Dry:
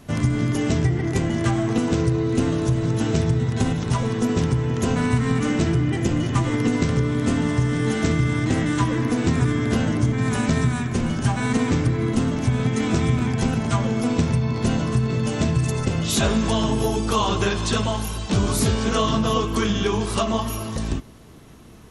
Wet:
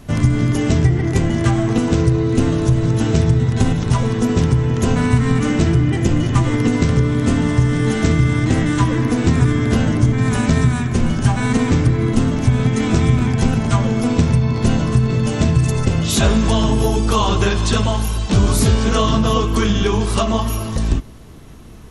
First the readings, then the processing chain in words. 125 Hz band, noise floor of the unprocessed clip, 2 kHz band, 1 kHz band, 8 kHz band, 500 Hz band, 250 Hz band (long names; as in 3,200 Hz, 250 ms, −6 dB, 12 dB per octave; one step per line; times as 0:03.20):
+6.5 dB, −29 dBFS, +3.5 dB, +3.5 dB, +3.5 dB, +4.0 dB, +4.5 dB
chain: low-shelf EQ 66 Hz +11.5 dB
level +3.5 dB